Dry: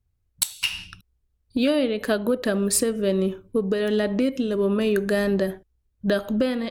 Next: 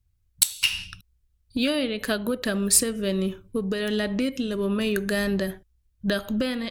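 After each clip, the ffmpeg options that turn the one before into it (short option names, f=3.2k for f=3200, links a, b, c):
-af "equalizer=f=480:w=0.41:g=-9.5,volume=4dB"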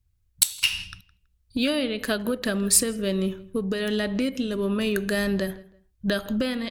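-filter_complex "[0:a]asplit=2[a][b];[b]adelay=163,lowpass=f=3k:p=1,volume=-20dB,asplit=2[c][d];[d]adelay=163,lowpass=f=3k:p=1,volume=0.26[e];[a][c][e]amix=inputs=3:normalize=0"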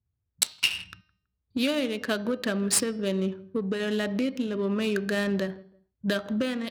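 -af "adynamicsmooth=sensitivity=5:basefreq=1.4k,highpass=120,bandreject=f=309.5:t=h:w=4,bandreject=f=619:t=h:w=4,bandreject=f=928.5:t=h:w=4,bandreject=f=1.238k:t=h:w=4,bandreject=f=1.5475k:t=h:w=4,bandreject=f=1.857k:t=h:w=4,bandreject=f=2.1665k:t=h:w=4,bandreject=f=2.476k:t=h:w=4,bandreject=f=2.7855k:t=h:w=4,bandreject=f=3.095k:t=h:w=4,bandreject=f=3.4045k:t=h:w=4,bandreject=f=3.714k:t=h:w=4,bandreject=f=4.0235k:t=h:w=4,bandreject=f=4.333k:t=h:w=4,bandreject=f=4.6425k:t=h:w=4,bandreject=f=4.952k:t=h:w=4,bandreject=f=5.2615k:t=h:w=4,bandreject=f=5.571k:t=h:w=4,bandreject=f=5.8805k:t=h:w=4,volume=-1.5dB"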